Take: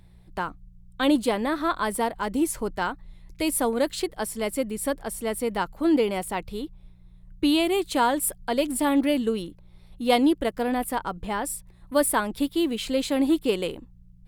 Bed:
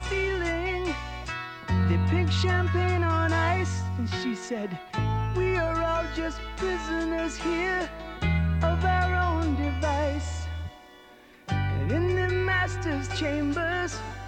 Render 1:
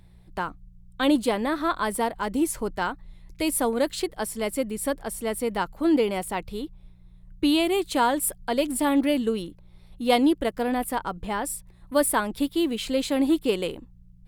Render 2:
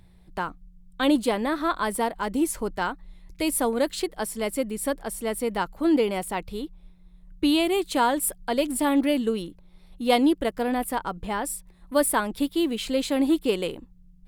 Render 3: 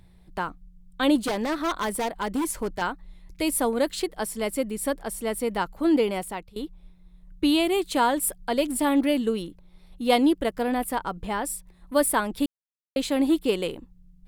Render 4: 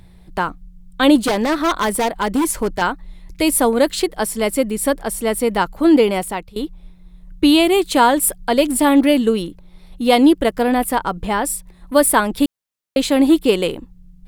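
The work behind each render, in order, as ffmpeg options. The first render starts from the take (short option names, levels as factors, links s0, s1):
-af anull
-af "bandreject=f=60:t=h:w=4,bandreject=f=120:t=h:w=4"
-filter_complex "[0:a]asettb=1/sr,asplit=3[s0][s1][s2];[s0]atrim=end=1.254[s3];[s1]atrim=start=1.25:end=2.82,asetpts=PTS-STARTPTS,afade=t=in:d=0.004:c=qsin,afade=t=out:st=1.566:d=0.004:c=qsin,aeval=exprs='0.0944*(abs(mod(val(0)/0.0944+3,4)-2)-1)':c=same[s4];[s2]atrim=start=2.816[s5];[s3][s4]acrossfade=d=0.004:c1=hsin:c2=qsin[s6];[s6][s5]acrossfade=d=0.004:c1=qsin:c2=hsin,asplit=4[s7][s8][s9][s10];[s7]atrim=end=6.56,asetpts=PTS-STARTPTS,afade=t=out:st=6.01:d=0.55:c=qsin:silence=0.0944061[s11];[s8]atrim=start=6.56:end=12.46,asetpts=PTS-STARTPTS,afade=t=in:d=0.004:c=hsin:silence=0.0944061,afade=t=out:st=5.896:d=0.004:c=hsin[s12];[s9]atrim=start=12.46:end=12.96,asetpts=PTS-STARTPTS,volume=0[s13];[s10]atrim=start=12.96,asetpts=PTS-STARTPTS,afade=t=in:d=0.004:c=hsin[s14];[s11][s12][s13][s14]concat=n=4:v=0:a=1"
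-af "volume=2.82,alimiter=limit=0.794:level=0:latency=1"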